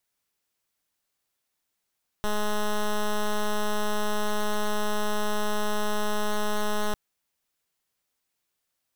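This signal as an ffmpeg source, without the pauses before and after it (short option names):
-f lavfi -i "aevalsrc='0.0562*(2*lt(mod(210*t,1),0.09)-1)':d=4.7:s=44100"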